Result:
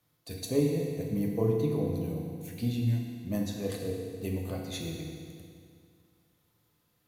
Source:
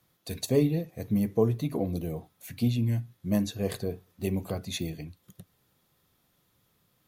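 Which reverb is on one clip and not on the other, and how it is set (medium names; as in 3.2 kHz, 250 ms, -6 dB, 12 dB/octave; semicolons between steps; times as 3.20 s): FDN reverb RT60 2.2 s, low-frequency decay 1.1×, high-frequency decay 0.9×, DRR -0.5 dB; trim -6 dB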